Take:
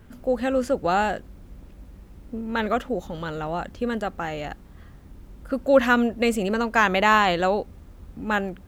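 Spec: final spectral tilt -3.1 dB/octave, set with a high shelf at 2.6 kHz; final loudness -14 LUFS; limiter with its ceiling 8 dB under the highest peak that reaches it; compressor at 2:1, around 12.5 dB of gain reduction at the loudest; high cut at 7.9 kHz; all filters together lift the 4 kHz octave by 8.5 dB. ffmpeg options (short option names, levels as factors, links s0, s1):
-af "lowpass=7900,highshelf=f=2600:g=6,equalizer=f=4000:t=o:g=7,acompressor=threshold=0.0178:ratio=2,volume=10,alimiter=limit=0.75:level=0:latency=1"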